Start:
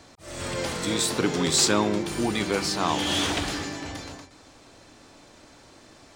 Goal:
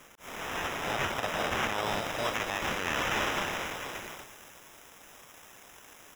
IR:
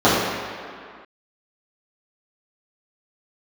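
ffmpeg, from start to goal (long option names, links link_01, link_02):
-filter_complex "[0:a]equalizer=frequency=770:width=1.5:gain=3.5,aecho=1:1:342:0.178,aeval=exprs='abs(val(0))':channel_layout=same,highpass=frequency=450:poles=1,acrusher=samples=10:mix=1:aa=0.000001,alimiter=limit=-21dB:level=0:latency=1:release=53,asetnsamples=nb_out_samples=441:pad=0,asendcmd='1.86 highshelf g 12',highshelf=frequency=4100:gain=7,acrossover=split=4500[link_01][link_02];[link_02]acompressor=threshold=-45dB:ratio=4:attack=1:release=60[link_03];[link_01][link_03]amix=inputs=2:normalize=0"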